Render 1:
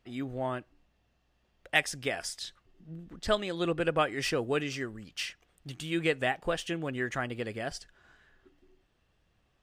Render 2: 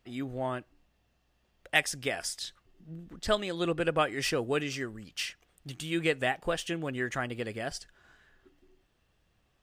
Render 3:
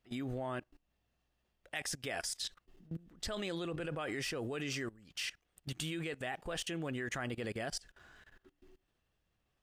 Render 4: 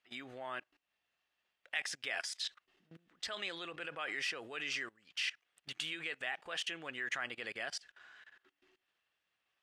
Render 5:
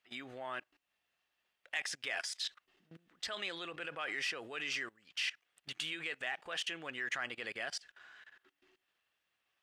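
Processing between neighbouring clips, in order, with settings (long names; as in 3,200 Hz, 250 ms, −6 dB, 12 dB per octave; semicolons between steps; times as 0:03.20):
high-shelf EQ 6,800 Hz +5 dB
output level in coarse steps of 21 dB; level +3.5 dB
resonant band-pass 2,300 Hz, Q 0.84; level +4.5 dB
soft clipping −24.5 dBFS, distortion −25 dB; level +1 dB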